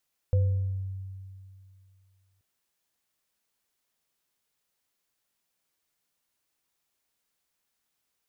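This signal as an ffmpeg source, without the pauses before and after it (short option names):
-f lavfi -i "aevalsrc='0.119*pow(10,-3*t/2.46)*sin(2*PI*95.6*t)+0.0299*pow(10,-3*t/0.72)*sin(2*PI*506*t)':d=2.08:s=44100"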